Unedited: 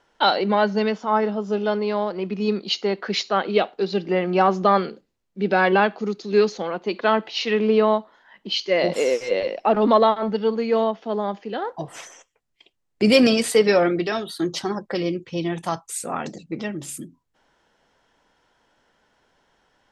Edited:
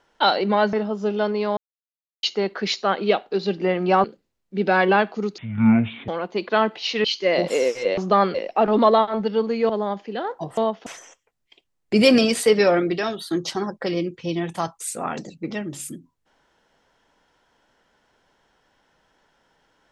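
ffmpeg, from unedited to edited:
-filter_complex "[0:a]asplit=13[a][b][c][d][e][f][g][h][i][j][k][l][m];[a]atrim=end=0.732[n];[b]atrim=start=1.198:end=2.04,asetpts=PTS-STARTPTS,afade=t=out:st=0.838:d=0.004:c=hsin[o];[c]atrim=start=2.04:end=2.7,asetpts=PTS-STARTPTS,volume=0[p];[d]atrim=start=2.7:end=4.512,asetpts=PTS-STARTPTS,afade=t=in:d=0.004:c=hsin[q];[e]atrim=start=4.878:end=6.224[r];[f]atrim=start=6.22:end=6.6,asetpts=PTS-STARTPTS,asetrate=23814,aresample=44100,atrim=end_sample=31033,asetpts=PTS-STARTPTS[s];[g]atrim=start=6.596:end=7.562[t];[h]atrim=start=8.498:end=9.432[u];[i]atrim=start=4.508:end=4.882[v];[j]atrim=start=9.428:end=10.782[w];[k]atrim=start=11.068:end=11.952[x];[l]atrim=start=10.778:end=11.072[y];[m]atrim=start=11.948[z];[o][p][q]concat=n=3:v=0:a=1[aa];[n][aa]acrossfade=d=0.004:c1=hsin:c2=hsin[ab];[ab][r]acrossfade=d=0.004:c1=hsin:c2=hsin[ac];[ac][s]acrossfade=d=0.004:c1=hsin:c2=hsin[ad];[ad][t]acrossfade=d=0.004:c1=hsin:c2=hsin[ae];[ae][u]acrossfade=d=0.004:c1=hsin:c2=hsin[af];[af][v]acrossfade=d=0.004:c1=hsin:c2=hsin[ag];[ag][w]acrossfade=d=0.004:c1=hsin:c2=hsin[ah];[ah][x]acrossfade=d=0.004:c1=hsin:c2=hsin[ai];[ai][y]acrossfade=d=0.004:c1=hsin:c2=hsin[aj];[aj][z]acrossfade=d=0.004:c1=hsin:c2=hsin"

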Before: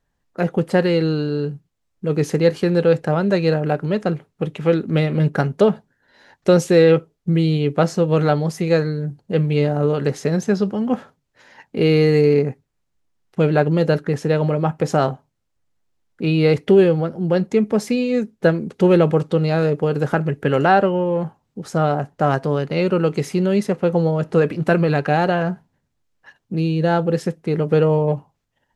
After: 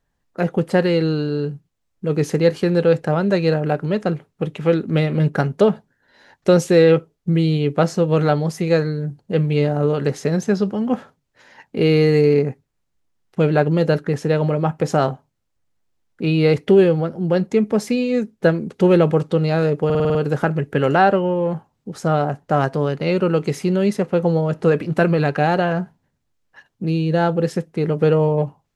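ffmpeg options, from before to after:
-filter_complex "[0:a]asplit=7[a][b][c][d][e][f][g];[a]atrim=end=19.902[h];[b]atrim=start=19.848:end=19.902[i];[c]atrim=start=19.848:end=19.902[j];[d]atrim=start=19.848:end=19.902[k];[e]atrim=start=19.848:end=19.902[l];[f]atrim=start=19.848:end=19.902[m];[g]atrim=start=19.848[n];[h][i]acrossfade=d=0.004:c1=hsin:c2=hsin[o];[o][j]acrossfade=d=0.004:c1=hsin:c2=hsin[p];[p][k]acrossfade=d=0.004:c1=hsin:c2=hsin[q];[q][l]acrossfade=d=0.004:c1=hsin:c2=hsin[r];[r][m]acrossfade=d=0.004:c1=hsin:c2=hsin[s];[s][n]acrossfade=d=0.004:c1=hsin:c2=hsin"

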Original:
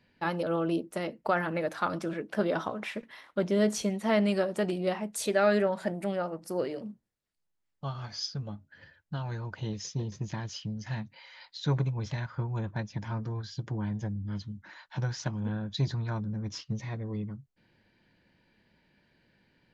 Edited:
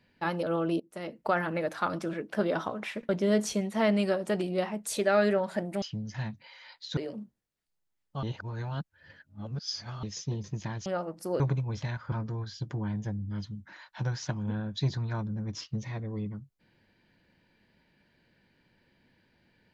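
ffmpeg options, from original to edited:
-filter_complex "[0:a]asplit=10[a][b][c][d][e][f][g][h][i][j];[a]atrim=end=0.8,asetpts=PTS-STARTPTS,afade=t=out:st=0.796:d=0.004:c=hsin:silence=0.0794328[k];[b]atrim=start=0.8:end=3.092,asetpts=PTS-STARTPTS,afade=t=in:d=0.41:silence=0.0794328[l];[c]atrim=start=3.378:end=6.112[m];[d]atrim=start=10.538:end=11.692[n];[e]atrim=start=6.648:end=7.912[o];[f]atrim=start=7.908:end=9.712,asetpts=PTS-STARTPTS,areverse[p];[g]atrim=start=9.708:end=10.542[q];[h]atrim=start=6.108:end=6.652[r];[i]atrim=start=11.688:end=12.412[s];[j]atrim=start=13.088[t];[k][l]concat=n=2:v=0:a=1[u];[u][m]acrossfade=d=0.004:c1=hsin:c2=hsin[v];[v][n]acrossfade=d=0.004:c1=hsin:c2=hsin[w];[w][o]acrossfade=d=0.004:c1=hsin:c2=hsin[x];[x][p]acrossfade=d=0.004:c1=hsin:c2=hsin[y];[y][q]acrossfade=d=0.004:c1=hsin:c2=hsin[z];[z][r]acrossfade=d=0.004:c1=hsin:c2=hsin[aa];[aa][s]acrossfade=d=0.004:c1=hsin:c2=hsin[ab];[ab][t]acrossfade=d=0.004:c1=hsin:c2=hsin"

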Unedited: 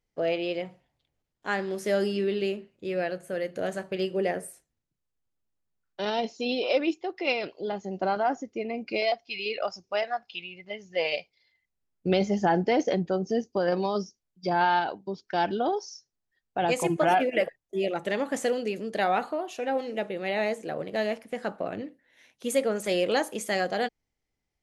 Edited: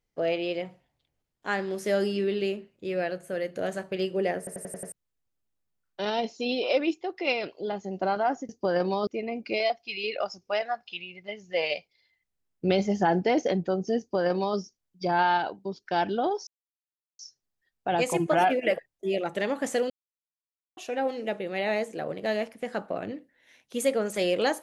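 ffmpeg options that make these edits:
-filter_complex "[0:a]asplit=12[a][b][c][d][e][f][g][h][i][j][k][l];[a]atrim=end=4.472[m];[b]atrim=start=4.378:end=4.472[n];[c]atrim=start=4.378:end=4.472[o];[d]atrim=start=4.378:end=4.472[p];[e]atrim=start=4.378:end=4.472[q];[f]atrim=start=4.378:end=4.472[r];[g]atrim=start=4.918:end=8.492[s];[h]atrim=start=13.408:end=13.992[t];[i]atrim=start=8.488:end=15.89,asetpts=PTS-STARTPTS,afade=t=out:st=7.398:d=0.004:c=hsin,apad=pad_dur=0.72[u];[j]atrim=start=15.89:end=18.6,asetpts=PTS-STARTPTS,afade=t=in:d=0.004:c=hsin,afade=t=out:st=2.706:d=0.004:c=hsin[v];[k]atrim=start=18.6:end=19.47,asetpts=PTS-STARTPTS,volume=0[w];[l]atrim=start=19.47,asetpts=PTS-STARTPTS,afade=t=in:d=0.004:c=hsin[x];[m][n]acrossfade=d=0.004:c1=hsin:c2=hsin[y];[y][o]acrossfade=d=0.004:c1=hsin:c2=hsin[z];[z][p]acrossfade=d=0.004:c1=hsin:c2=hsin[aa];[aa][q]acrossfade=d=0.004:c1=hsin:c2=hsin[ab];[ab][r]acrossfade=d=0.004:c1=hsin:c2=hsin[ac];[ac][s]acrossfade=d=0.004:c1=hsin:c2=hsin[ad];[ad][t]acrossfade=d=0.004:c1=hsin:c2=hsin[ae];[u][v][w][x]concat=n=4:v=0:a=1[af];[ae][af]acrossfade=d=0.004:c1=hsin:c2=hsin"

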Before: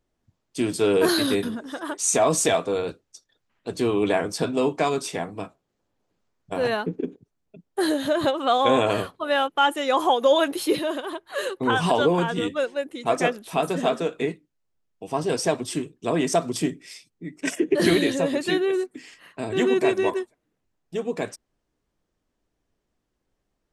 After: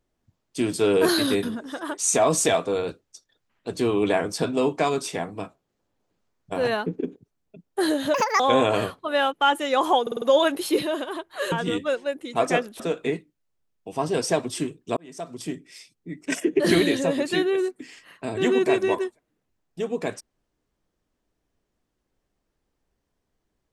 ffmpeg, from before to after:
-filter_complex "[0:a]asplit=10[a][b][c][d][e][f][g][h][i][j];[a]atrim=end=8.144[k];[b]atrim=start=8.14:end=8.56,asetpts=PTS-STARTPTS,asetrate=71883,aresample=44100,atrim=end_sample=11363,asetpts=PTS-STARTPTS[l];[c]atrim=start=8.556:end=10.232[m];[d]atrim=start=10.178:end=10.232[n];[e]atrim=start=10.178:end=10.232[o];[f]atrim=start=10.178:end=10.232[p];[g]atrim=start=10.178:end=11.482[q];[h]atrim=start=12.218:end=13.502[r];[i]atrim=start=13.948:end=16.12,asetpts=PTS-STARTPTS,afade=t=out:st=2.168:d=0.004:c=hsin[s];[j]atrim=start=16.12,asetpts=PTS-STARTPTS,afade=t=in:d=1.13[t];[k][l]acrossfade=d=0.004:c1=hsin:c2=hsin[u];[u][m]acrossfade=d=0.004:c1=hsin:c2=hsin[v];[v][n]acrossfade=d=0.004:c1=hsin:c2=hsin[w];[w][o]acrossfade=d=0.004:c1=hsin:c2=hsin[x];[x][p]acrossfade=d=0.004:c1=hsin:c2=hsin[y];[y][q]acrossfade=d=0.004:c1=hsin:c2=hsin[z];[z][r]acrossfade=d=0.004:c1=hsin:c2=hsin[aa];[s][t]concat=n=2:v=0:a=1[ab];[aa][ab]acrossfade=d=0.004:c1=hsin:c2=hsin"

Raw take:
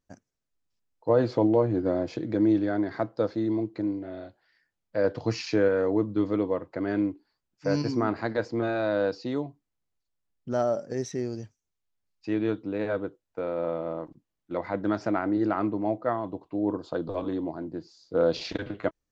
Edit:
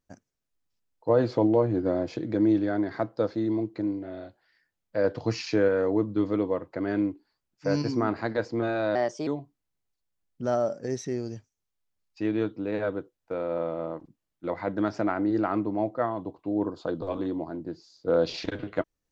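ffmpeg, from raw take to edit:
-filter_complex "[0:a]asplit=3[a][b][c];[a]atrim=end=8.954[d];[b]atrim=start=8.95:end=9.34,asetpts=PTS-STARTPTS,asetrate=53802,aresample=44100[e];[c]atrim=start=9.336[f];[d][e]acrossfade=d=0.004:c1=hsin:c2=hsin[g];[g][f]acrossfade=d=0.004:c1=hsin:c2=hsin"

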